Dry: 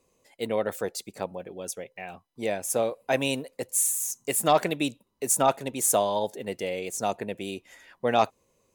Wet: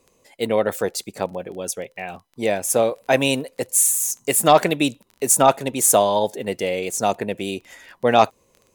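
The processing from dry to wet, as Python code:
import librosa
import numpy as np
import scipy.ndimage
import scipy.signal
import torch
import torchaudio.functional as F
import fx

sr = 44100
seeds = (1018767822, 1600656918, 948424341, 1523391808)

y = fx.dmg_crackle(x, sr, seeds[0], per_s=17.0, level_db=-41.0)
y = F.gain(torch.from_numpy(y), 7.5).numpy()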